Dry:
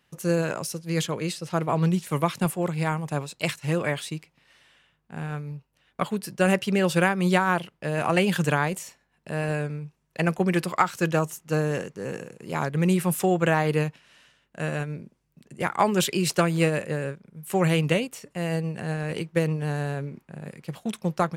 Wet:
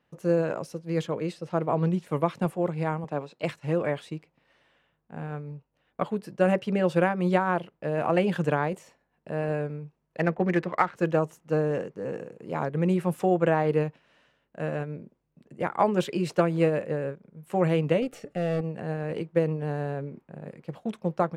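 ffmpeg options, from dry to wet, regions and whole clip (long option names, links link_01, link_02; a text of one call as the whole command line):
ffmpeg -i in.wav -filter_complex "[0:a]asettb=1/sr,asplit=3[link_01][link_02][link_03];[link_01]atrim=end=3.044[link_04];[link_02]atrim=start=3.04:end=3.44,asetpts=PTS-STARTPTS,afade=type=in:duration=0.004:curve=qsin,afade=type=out:start_time=0.396:duration=0.004:curve=qsin,highpass=170,acrossover=split=6200[link_05][link_06];[link_06]acompressor=threshold=-58dB:ratio=4:attack=1:release=60[link_07];[link_05][link_07]amix=inputs=2:normalize=0[link_08];[link_03]atrim=start=3.436[link_09];[link_04][link_08]acrossfade=duration=0.004:curve1=hsin:curve2=qsin[link_10];[link_10][link_09]acrossfade=duration=0.004:curve1=qsin:curve2=hsin,asettb=1/sr,asplit=3[link_11][link_12][link_13];[link_11]atrim=end=10.204[link_14];[link_12]atrim=start=10.2:end=10.96,asetpts=PTS-STARTPTS,afade=type=in:duration=0.004:curve=qsin,afade=type=out:start_time=0.756:duration=0.004:curve=qsin,equalizer=frequency=1900:width_type=o:width=0.49:gain=8,adynamicsmooth=sensitivity=5:basefreq=1500[link_15];[link_13]atrim=start=10.956[link_16];[link_14][link_15]acrossfade=duration=0.004:curve1=hsin:curve2=qsin[link_17];[link_17][link_16]acrossfade=duration=0.004:curve1=qsin:curve2=hsin,asettb=1/sr,asplit=3[link_18][link_19][link_20];[link_18]atrim=end=18.024[link_21];[link_19]atrim=start=18.02:end=18.61,asetpts=PTS-STARTPTS,afade=type=in:duration=0.004:curve=qsin,afade=type=out:start_time=0.586:duration=0.004:curve=qsin,aeval=exprs='(tanh(28.2*val(0)+0.4)-tanh(0.4))/28.2':channel_layout=same,acontrast=88,asuperstop=centerf=1000:order=12:qfactor=4[link_22];[link_20]atrim=start=18.606[link_23];[link_21][link_22]acrossfade=duration=0.004:curve1=hsin:curve2=qsin[link_24];[link_24][link_23]acrossfade=duration=0.004:curve1=qsin:curve2=hsin,lowpass=frequency=2100:poles=1,equalizer=frequency=470:width=0.64:gain=7.5,bandreject=frequency=390:width=12,volume=-5.5dB" out.wav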